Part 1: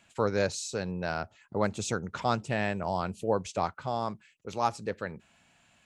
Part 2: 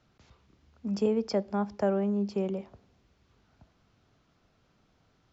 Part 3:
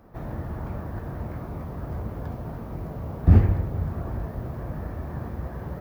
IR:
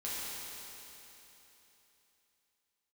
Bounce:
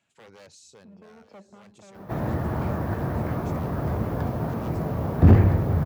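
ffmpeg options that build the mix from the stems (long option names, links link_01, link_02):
-filter_complex "[0:a]aeval=exprs='0.0562*(abs(mod(val(0)/0.0562+3,4)-2)-1)':channel_layout=same,volume=-12dB,asplit=2[link_01][link_02];[link_02]volume=-20.5dB[link_03];[1:a]lowpass=1600,dynaudnorm=framelen=110:gausssize=11:maxgain=8dB,asoftclip=type=hard:threshold=-22.5dB,volume=-15.5dB[link_04];[2:a]acontrast=72,asoftclip=type=tanh:threshold=-4.5dB,adelay=1950,volume=1.5dB[link_05];[link_01][link_04]amix=inputs=2:normalize=0,alimiter=level_in=18.5dB:limit=-24dB:level=0:latency=1:release=126,volume=-18.5dB,volume=0dB[link_06];[link_03]aecho=0:1:878:1[link_07];[link_05][link_06][link_07]amix=inputs=3:normalize=0,highpass=93"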